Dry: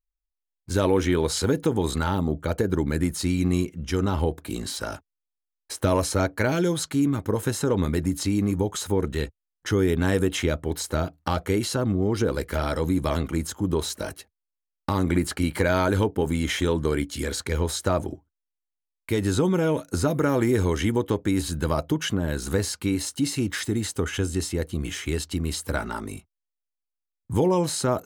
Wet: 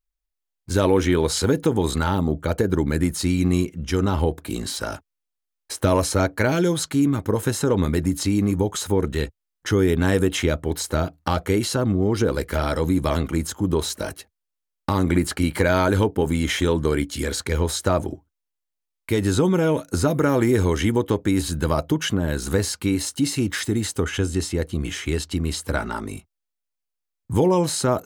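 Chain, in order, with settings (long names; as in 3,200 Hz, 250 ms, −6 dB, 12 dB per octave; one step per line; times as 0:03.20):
0:24.03–0:26.15: high-shelf EQ 11,000 Hz −7 dB
level +3 dB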